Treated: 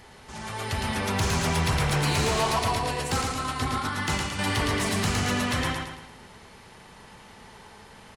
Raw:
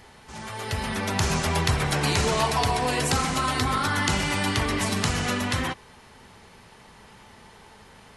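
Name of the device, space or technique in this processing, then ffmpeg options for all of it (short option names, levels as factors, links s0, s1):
saturation between pre-emphasis and de-emphasis: -filter_complex "[0:a]asettb=1/sr,asplit=3[s0][s1][s2];[s0]atrim=end=2.594[s3];[s1]atrim=start=2.59:end=4.39,asetpts=PTS-STARTPTS,afade=t=in:d=0.004:c=qsin,afade=t=out:st=1.796:d=0.004:c=qsin,agate=range=0.316:threshold=0.0708:ratio=16:detection=peak[s4];[s2]atrim=start=4.386[s5];[s3][s4]acrossfade=d=0.004:c1=hsin:c2=qsin[s6];[s6][s5]acrossfade=d=0.004:c1=qsin:c2=hsin,highshelf=f=2600:g=9.5,aecho=1:1:111|222|333|444|555:0.596|0.256|0.11|0.0474|0.0204,asoftclip=type=tanh:threshold=0.168,highshelf=f=2600:g=-9.5"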